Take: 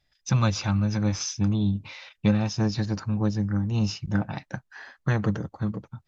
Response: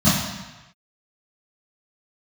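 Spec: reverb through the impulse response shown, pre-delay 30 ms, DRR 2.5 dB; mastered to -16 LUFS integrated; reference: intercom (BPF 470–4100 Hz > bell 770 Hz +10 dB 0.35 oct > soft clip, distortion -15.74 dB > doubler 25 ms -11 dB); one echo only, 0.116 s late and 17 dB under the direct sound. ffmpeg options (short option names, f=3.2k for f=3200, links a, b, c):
-filter_complex "[0:a]aecho=1:1:116:0.141,asplit=2[a][b];[1:a]atrim=start_sample=2205,adelay=30[c];[b][c]afir=irnorm=-1:irlink=0,volume=-22.5dB[d];[a][d]amix=inputs=2:normalize=0,highpass=470,lowpass=4.1k,equalizer=f=770:t=o:w=0.35:g=10,asoftclip=threshold=-18dB,asplit=2[e][f];[f]adelay=25,volume=-11dB[g];[e][g]amix=inputs=2:normalize=0,volume=11dB"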